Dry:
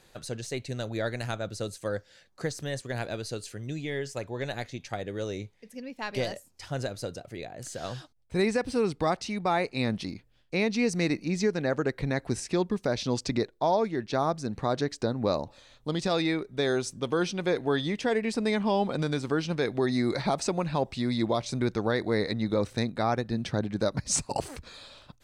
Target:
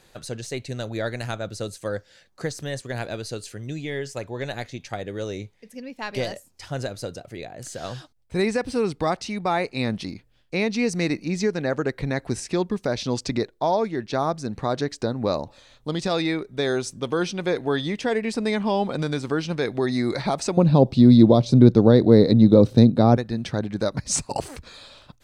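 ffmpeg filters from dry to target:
-filter_complex "[0:a]asettb=1/sr,asplit=3[a][b][c];[a]atrim=end=20.574[d];[b]atrim=start=20.57:end=23.17,asetpts=PTS-STARTPTS,afade=t=in:d=0.004:c=qsin,afade=t=out:st=2.596:d=0.004:c=qsin,equalizer=f=125:t=o:w=1:g=12,equalizer=f=250:t=o:w=1:g=10,equalizer=f=500:t=o:w=1:g=7,equalizer=f=2k:t=o:w=1:g=-9,equalizer=f=4k:t=o:w=1:g=5,equalizer=f=8k:t=o:w=1:g=-7[e];[c]atrim=start=23.166[f];[d][e]acrossfade=d=0.004:c1=hsin:c2=qsin[g];[g][f]acrossfade=d=0.004:c1=qsin:c2=hsin,volume=3dB"

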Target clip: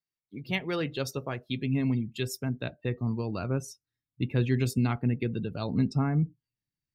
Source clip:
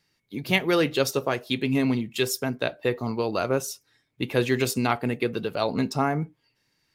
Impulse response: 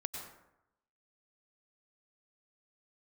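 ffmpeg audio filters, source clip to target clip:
-af "asubboost=boost=6.5:cutoff=220,afftdn=nr=19:nf=-38,volume=-8.5dB"

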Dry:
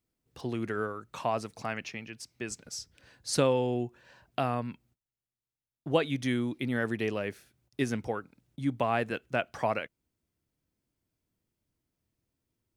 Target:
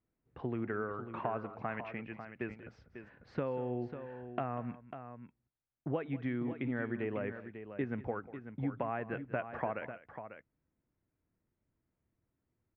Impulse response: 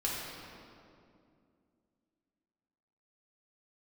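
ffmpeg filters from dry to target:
-af "acompressor=threshold=-32dB:ratio=6,lowpass=f=2.1k:w=0.5412,lowpass=f=2.1k:w=1.3066,aecho=1:1:192|546:0.15|0.316"

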